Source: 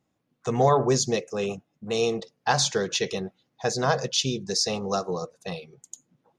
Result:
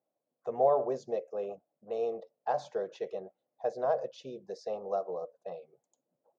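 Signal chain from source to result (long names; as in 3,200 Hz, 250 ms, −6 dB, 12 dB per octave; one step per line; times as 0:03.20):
resonant band-pass 600 Hz, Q 3.9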